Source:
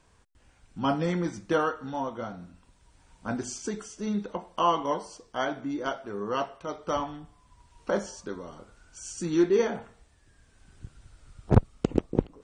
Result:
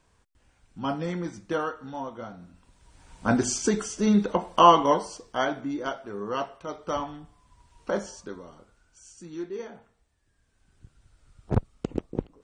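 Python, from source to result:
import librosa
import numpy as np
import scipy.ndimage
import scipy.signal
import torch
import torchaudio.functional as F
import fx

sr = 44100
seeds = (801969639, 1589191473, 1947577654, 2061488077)

y = fx.gain(x, sr, db=fx.line((2.39, -3.0), (3.28, 9.0), (4.62, 9.0), (5.93, -0.5), (8.15, -0.5), (9.27, -12.5), (9.77, -12.5), (11.52, -5.0)))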